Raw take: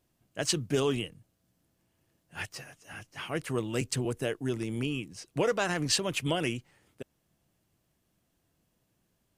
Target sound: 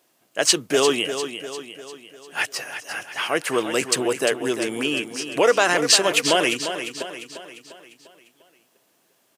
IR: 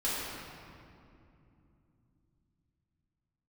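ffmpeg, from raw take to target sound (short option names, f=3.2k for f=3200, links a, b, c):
-filter_complex "[0:a]asplit=2[a][b];[b]alimiter=limit=-21dB:level=0:latency=1,volume=-1.5dB[c];[a][c]amix=inputs=2:normalize=0,highpass=420,aecho=1:1:349|698|1047|1396|1745|2094:0.335|0.167|0.0837|0.0419|0.0209|0.0105,volume=8.5dB"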